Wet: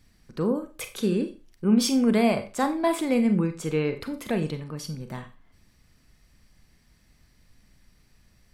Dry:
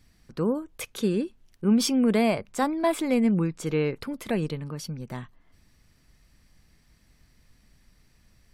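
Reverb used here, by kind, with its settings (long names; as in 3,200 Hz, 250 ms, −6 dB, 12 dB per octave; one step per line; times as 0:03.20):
four-comb reverb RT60 0.32 s, combs from 30 ms, DRR 8 dB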